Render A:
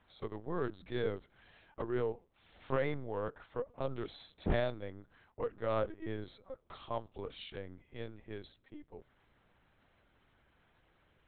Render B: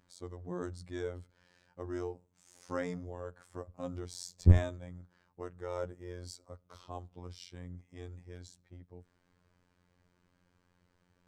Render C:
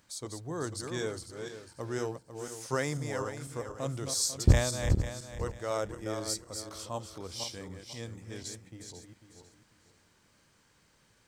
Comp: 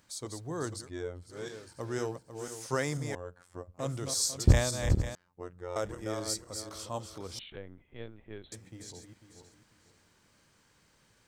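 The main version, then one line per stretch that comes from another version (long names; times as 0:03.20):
C
0:00.82–0:01.29: punch in from B, crossfade 0.16 s
0:03.15–0:03.79: punch in from B
0:05.15–0:05.76: punch in from B
0:07.39–0:08.52: punch in from A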